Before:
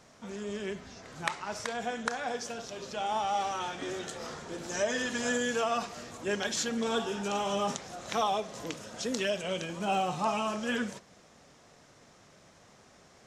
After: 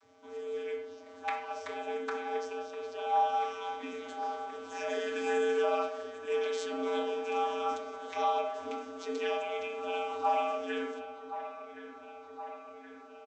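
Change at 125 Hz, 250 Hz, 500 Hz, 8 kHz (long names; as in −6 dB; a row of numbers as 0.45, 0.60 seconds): below −20 dB, −7.0 dB, +1.5 dB, −14.5 dB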